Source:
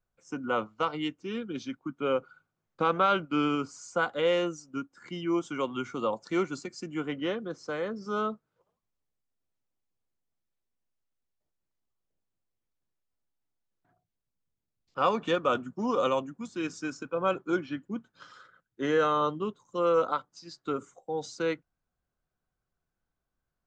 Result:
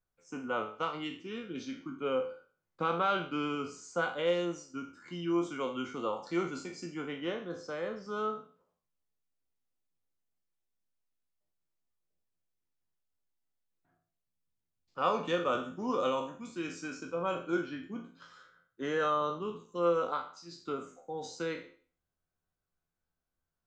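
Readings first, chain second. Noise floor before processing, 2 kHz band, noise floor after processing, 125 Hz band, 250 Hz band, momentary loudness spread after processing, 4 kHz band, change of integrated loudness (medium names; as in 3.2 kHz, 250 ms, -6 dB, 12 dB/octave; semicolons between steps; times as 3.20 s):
-85 dBFS, -3.5 dB, under -85 dBFS, -4.0 dB, -4.5 dB, 12 LU, -3.5 dB, -4.0 dB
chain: spectral sustain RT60 0.44 s; feedback comb 86 Hz, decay 0.24 s, harmonics all, mix 70%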